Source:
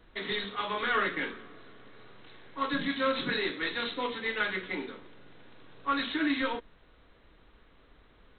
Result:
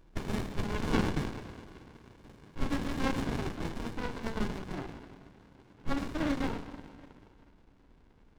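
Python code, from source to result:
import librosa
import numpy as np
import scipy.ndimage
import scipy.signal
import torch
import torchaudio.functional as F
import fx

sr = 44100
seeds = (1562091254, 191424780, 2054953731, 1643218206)

y = fx.peak_eq(x, sr, hz=1100.0, db=6.0, octaves=1.1)
y = fx.hum_notches(y, sr, base_hz=50, count=5)
y = fx.high_shelf(y, sr, hz=2700.0, db=fx.steps((0.0, 8.5), (3.26, -3.0)))
y = fx.rev_freeverb(y, sr, rt60_s=2.4, hf_ratio=0.7, predelay_ms=10, drr_db=9.0)
y = fx.running_max(y, sr, window=65)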